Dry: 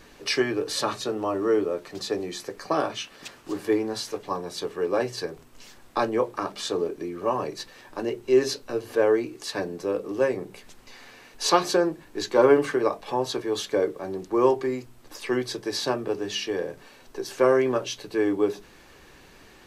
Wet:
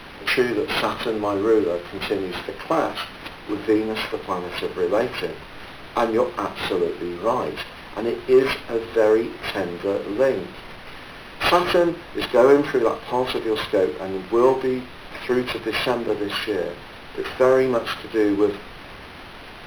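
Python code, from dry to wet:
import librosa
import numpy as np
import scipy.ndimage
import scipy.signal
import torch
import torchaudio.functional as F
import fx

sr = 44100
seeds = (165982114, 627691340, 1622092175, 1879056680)

p1 = fx.high_shelf(x, sr, hz=6200.0, db=-9.0)
p2 = p1 + fx.room_flutter(p1, sr, wall_m=10.2, rt60_s=0.28, dry=0)
p3 = fx.dmg_noise_colour(p2, sr, seeds[0], colour='pink', level_db=-49.0)
p4 = fx.bass_treble(p3, sr, bass_db=0, treble_db=12)
p5 = np.clip(p4, -10.0 ** (-16.0 / 20.0), 10.0 ** (-16.0 / 20.0))
p6 = p4 + F.gain(torch.from_numpy(p5), -4.0).numpy()
p7 = fx.hum_notches(p6, sr, base_hz=60, count=2)
y = np.interp(np.arange(len(p7)), np.arange(len(p7))[::6], p7[::6])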